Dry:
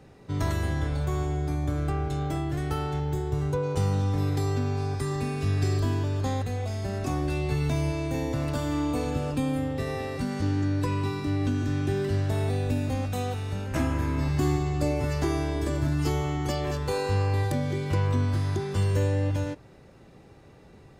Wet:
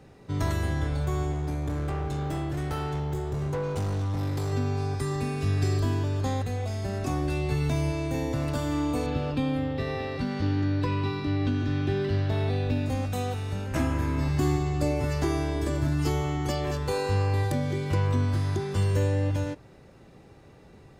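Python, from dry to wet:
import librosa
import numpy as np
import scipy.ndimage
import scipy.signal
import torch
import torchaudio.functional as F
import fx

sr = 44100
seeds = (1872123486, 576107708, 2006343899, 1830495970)

y = fx.clip_hard(x, sr, threshold_db=-26.0, at=(1.32, 4.53))
y = fx.high_shelf_res(y, sr, hz=5700.0, db=-11.5, q=1.5, at=(9.06, 12.86))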